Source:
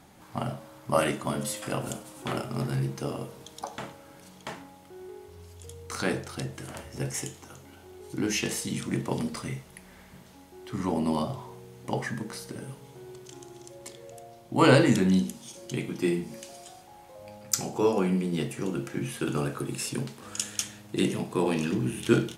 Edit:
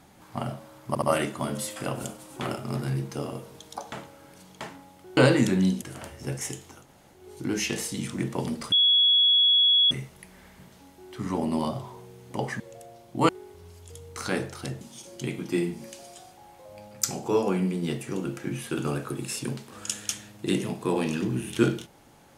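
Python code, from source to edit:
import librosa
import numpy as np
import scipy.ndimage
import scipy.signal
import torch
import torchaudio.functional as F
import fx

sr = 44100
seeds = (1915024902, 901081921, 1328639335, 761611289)

y = fx.edit(x, sr, fx.stutter(start_s=0.88, slice_s=0.07, count=3),
    fx.swap(start_s=5.03, length_s=1.52, other_s=14.66, other_length_s=0.65),
    fx.room_tone_fill(start_s=7.55, length_s=0.37, crossfade_s=0.16),
    fx.insert_tone(at_s=9.45, length_s=1.19, hz=3360.0, db=-16.5),
    fx.cut(start_s=12.14, length_s=1.83), tone=tone)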